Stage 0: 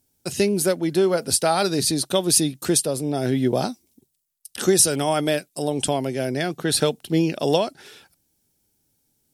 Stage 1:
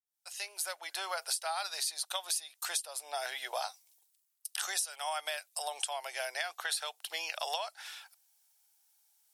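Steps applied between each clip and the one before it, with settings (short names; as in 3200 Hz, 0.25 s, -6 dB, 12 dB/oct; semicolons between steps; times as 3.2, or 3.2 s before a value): opening faded in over 1.32 s; steep high-pass 740 Hz 36 dB/oct; compressor 8:1, threshold -32 dBFS, peak gain reduction 19.5 dB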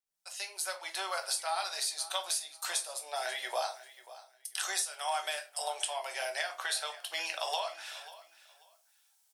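bell 13000 Hz -9.5 dB 0.2 oct; feedback echo 0.539 s, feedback 22%, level -17 dB; shoebox room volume 190 m³, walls furnished, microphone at 1.1 m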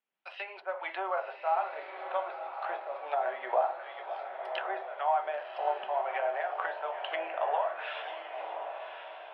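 treble ducked by the level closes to 950 Hz, closed at -33.5 dBFS; elliptic band-pass 190–2900 Hz, stop band 40 dB; on a send: diffused feedback echo 1.075 s, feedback 43%, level -7.5 dB; on the sum: gain +8 dB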